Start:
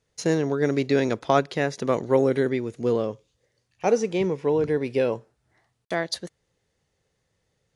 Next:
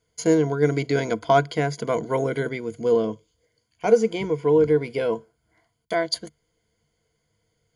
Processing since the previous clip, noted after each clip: ripple EQ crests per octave 1.8, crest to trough 14 dB; gain -1 dB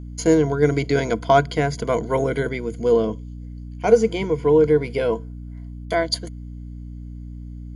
hum 60 Hz, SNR 13 dB; gain +2.5 dB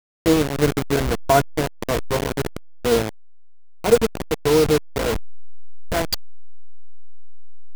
level-crossing sampler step -15.5 dBFS

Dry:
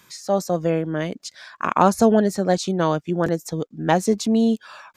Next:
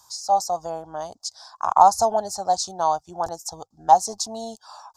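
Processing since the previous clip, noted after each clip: EQ curve 100 Hz 0 dB, 150 Hz -18 dB, 250 Hz -19 dB, 510 Hz -12 dB, 790 Hz +12 dB, 1300 Hz -4 dB, 2200 Hz -26 dB, 5000 Hz +8 dB, 8000 Hz +5 dB, 13000 Hz -1 dB; gain -2 dB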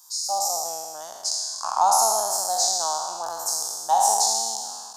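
spectral trails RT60 1.87 s; RIAA curve recording; gain -8 dB

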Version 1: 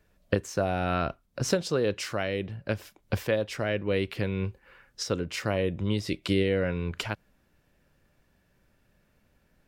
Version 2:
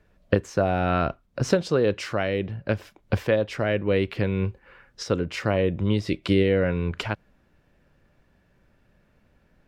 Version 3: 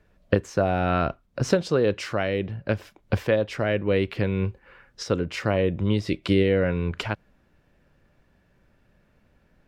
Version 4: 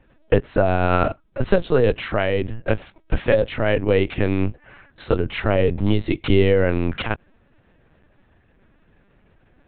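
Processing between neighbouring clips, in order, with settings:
LPF 2700 Hz 6 dB/oct; gain +5 dB
nothing audible
LPC vocoder at 8 kHz pitch kept; gain +5 dB

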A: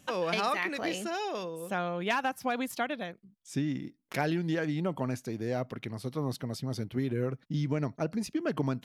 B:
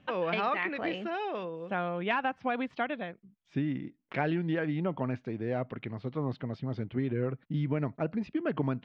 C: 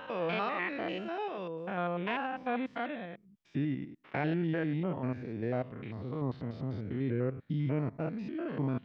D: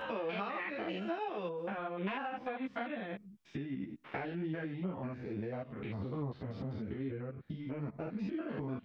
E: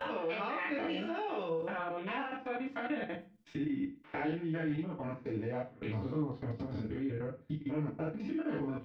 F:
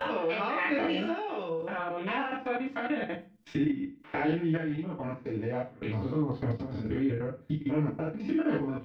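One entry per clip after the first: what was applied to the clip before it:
LPF 3100 Hz 24 dB/oct
stepped spectrum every 0.1 s
compressor 6:1, threshold -40 dBFS, peak gain reduction 12.5 dB; ensemble effect; gain +7.5 dB
level quantiser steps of 21 dB; FDN reverb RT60 0.33 s, low-frequency decay 1.05×, high-frequency decay 1×, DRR 2.5 dB; gain +4 dB
random-step tremolo; gain +8 dB

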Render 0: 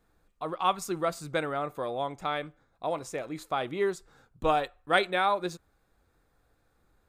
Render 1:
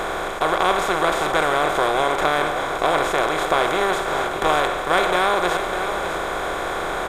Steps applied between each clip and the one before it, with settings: per-bin compression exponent 0.2; echo 0.604 s -9.5 dB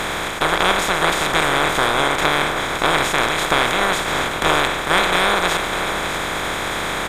spectral limiter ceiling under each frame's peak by 14 dB; gain +2 dB

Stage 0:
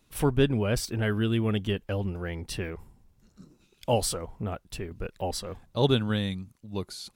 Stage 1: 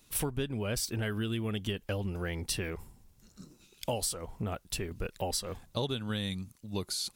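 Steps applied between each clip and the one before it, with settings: high shelf 3300 Hz +10 dB; compressor 12:1, threshold -29 dBFS, peak gain reduction 13.5 dB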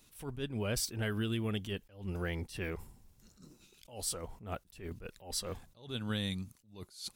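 attack slew limiter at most 140 dB/s; gain -1 dB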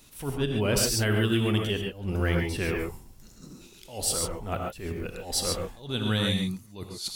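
reverb, pre-delay 3 ms, DRR 1.5 dB; gain +8.5 dB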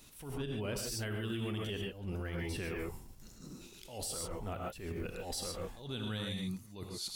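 compressor 2:1, threshold -33 dBFS, peak gain reduction 7.5 dB; limiter -27 dBFS, peak gain reduction 9.5 dB; attack slew limiter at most 100 dB/s; gain -2.5 dB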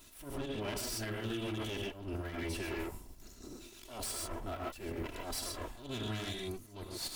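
minimum comb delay 3 ms; gain +2 dB

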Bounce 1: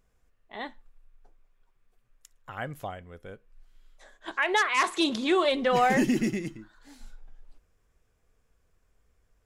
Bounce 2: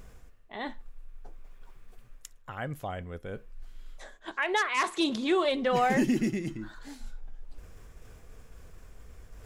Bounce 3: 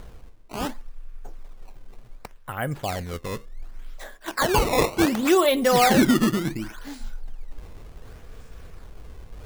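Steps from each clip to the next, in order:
low shelf 390 Hz +3.5 dB; reverse; upward compressor, threshold -26 dBFS; reverse; gain -3.5 dB
decimation with a swept rate 16×, swing 160% 0.68 Hz; gain +7.5 dB

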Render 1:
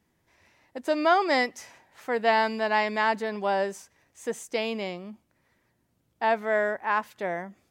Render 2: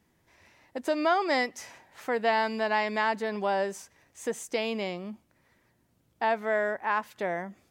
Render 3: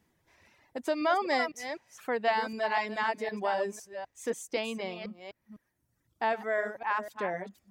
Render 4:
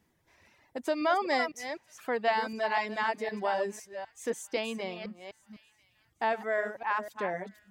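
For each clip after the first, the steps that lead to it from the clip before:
compressor 1.5:1, threshold -34 dBFS, peak gain reduction 7 dB; gain +2.5 dB
reverse delay 0.253 s, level -7 dB; reverb removal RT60 1.3 s; gain -2 dB
thin delay 0.991 s, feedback 48%, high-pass 1900 Hz, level -23.5 dB

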